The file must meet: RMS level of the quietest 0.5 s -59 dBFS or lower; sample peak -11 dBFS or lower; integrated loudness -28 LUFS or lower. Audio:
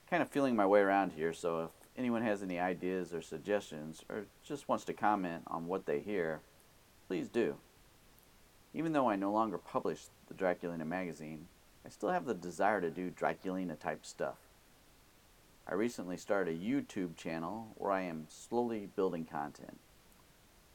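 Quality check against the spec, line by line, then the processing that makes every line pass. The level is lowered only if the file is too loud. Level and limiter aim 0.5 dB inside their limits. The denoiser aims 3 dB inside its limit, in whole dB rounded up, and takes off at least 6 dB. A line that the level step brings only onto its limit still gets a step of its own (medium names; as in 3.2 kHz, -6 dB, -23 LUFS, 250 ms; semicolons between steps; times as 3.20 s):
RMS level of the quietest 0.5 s -64 dBFS: pass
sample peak -15.0 dBFS: pass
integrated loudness -37.0 LUFS: pass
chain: none needed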